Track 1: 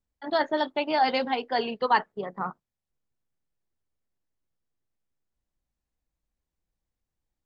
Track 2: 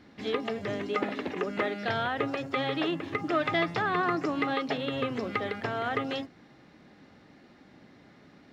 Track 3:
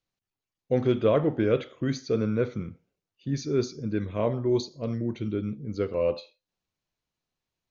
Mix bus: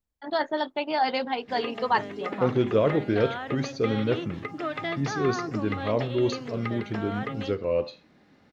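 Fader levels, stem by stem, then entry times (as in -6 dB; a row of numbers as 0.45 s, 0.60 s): -1.5 dB, -4.0 dB, 0.0 dB; 0.00 s, 1.30 s, 1.70 s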